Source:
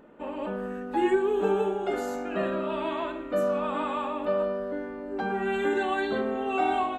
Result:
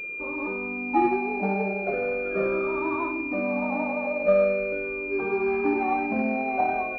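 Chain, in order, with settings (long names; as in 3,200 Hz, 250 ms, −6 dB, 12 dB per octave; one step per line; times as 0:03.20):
rippled gain that drifts along the octave scale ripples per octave 0.59, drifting −0.41 Hz, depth 17 dB
switching amplifier with a slow clock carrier 2,400 Hz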